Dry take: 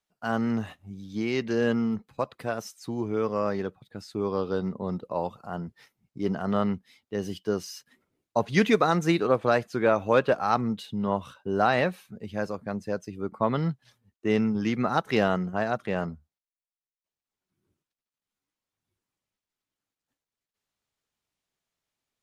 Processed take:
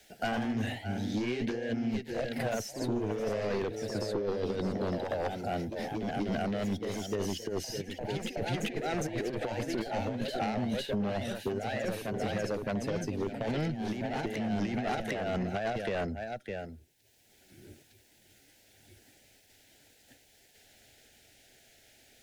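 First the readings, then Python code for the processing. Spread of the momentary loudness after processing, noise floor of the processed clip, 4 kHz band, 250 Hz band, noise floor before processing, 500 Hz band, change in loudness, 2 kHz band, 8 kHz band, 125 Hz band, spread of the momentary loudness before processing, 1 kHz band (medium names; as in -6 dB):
3 LU, -63 dBFS, -1.5 dB, -5.0 dB, under -85 dBFS, -6.0 dB, -6.0 dB, -6.0 dB, +1.5 dB, -3.5 dB, 14 LU, -8.0 dB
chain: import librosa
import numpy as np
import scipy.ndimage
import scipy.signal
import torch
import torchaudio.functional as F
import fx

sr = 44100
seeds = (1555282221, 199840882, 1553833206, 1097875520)

p1 = fx.diode_clip(x, sr, knee_db=-22.5)
p2 = scipy.signal.sosfilt(scipy.signal.cheby1(2, 1.0, [750.0, 1600.0], 'bandstop', fs=sr, output='sos'), p1)
p3 = fx.peak_eq(p2, sr, hz=170.0, db=-10.5, octaves=0.33)
p4 = p3 + fx.echo_single(p3, sr, ms=606, db=-18.0, dry=0)
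p5 = fx.over_compress(p4, sr, threshold_db=-33.0, ratio=-0.5)
p6 = fx.fold_sine(p5, sr, drive_db=7, ceiling_db=-19.0)
p7 = fx.echo_pitch(p6, sr, ms=97, semitones=1, count=2, db_per_echo=-6.0)
p8 = fx.band_squash(p7, sr, depth_pct=70)
y = p8 * 10.0 ** (-8.0 / 20.0)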